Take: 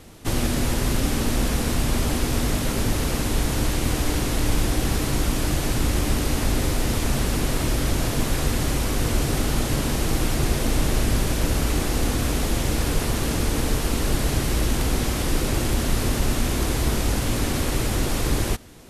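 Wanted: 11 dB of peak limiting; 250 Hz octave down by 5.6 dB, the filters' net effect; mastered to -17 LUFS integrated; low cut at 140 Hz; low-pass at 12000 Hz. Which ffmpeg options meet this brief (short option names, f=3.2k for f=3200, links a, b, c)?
-af "highpass=140,lowpass=12k,equalizer=f=250:t=o:g=-6.5,volume=16.5dB,alimiter=limit=-9dB:level=0:latency=1"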